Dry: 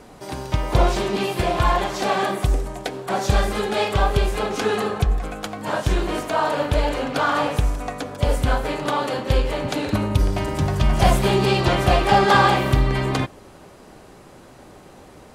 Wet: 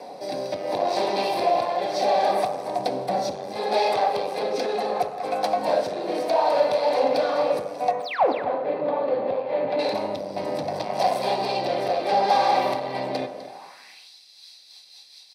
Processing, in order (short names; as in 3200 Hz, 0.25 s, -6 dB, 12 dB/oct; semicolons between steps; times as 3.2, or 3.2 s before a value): 2.78–3.56 tone controls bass +13 dB, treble +2 dB; compressor 2.5:1, threshold -24 dBFS, peak gain reduction 15 dB; 8–8.32 painted sound fall 230–9800 Hz -14 dBFS; rotary speaker horn 0.7 Hz, later 5 Hz, at 13.95; echo 0.253 s -17.5 dB; soft clip -27 dBFS, distortion -7 dB; 7.91–9.79 air absorption 500 m; reverb RT60 1.0 s, pre-delay 3 ms, DRR 6 dB; high-pass sweep 570 Hz -> 3900 Hz, 13.43–14.11